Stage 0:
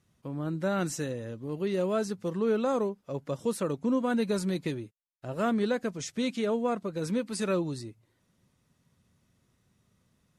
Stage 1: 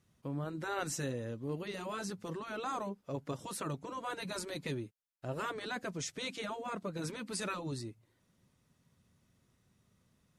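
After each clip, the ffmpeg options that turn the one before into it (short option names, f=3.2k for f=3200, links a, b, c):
-af "afftfilt=real='re*lt(hypot(re,im),0.2)':imag='im*lt(hypot(re,im),0.2)':win_size=1024:overlap=0.75,volume=-2dB"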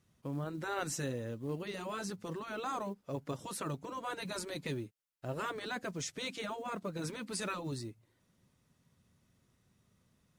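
-af "acrusher=bits=8:mode=log:mix=0:aa=0.000001"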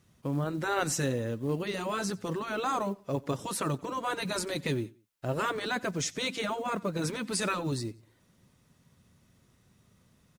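-af "aecho=1:1:91|182:0.0708|0.0248,volume=7.5dB"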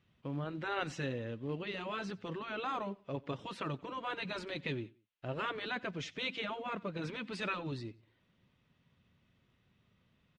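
-af "lowpass=f=3k:t=q:w=2.1,volume=-8dB"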